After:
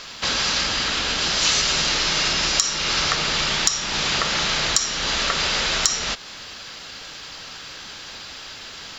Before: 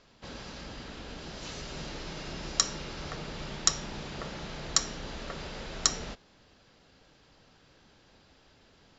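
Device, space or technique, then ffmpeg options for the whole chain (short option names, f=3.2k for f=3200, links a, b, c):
mastering chain: -af "equalizer=f=1.2k:t=o:w=0.44:g=3,acompressor=threshold=-42dB:ratio=2.5,tiltshelf=f=1.1k:g=-9,asoftclip=type=hard:threshold=-12dB,alimiter=level_in=22dB:limit=-1dB:release=50:level=0:latency=1,volume=-1dB"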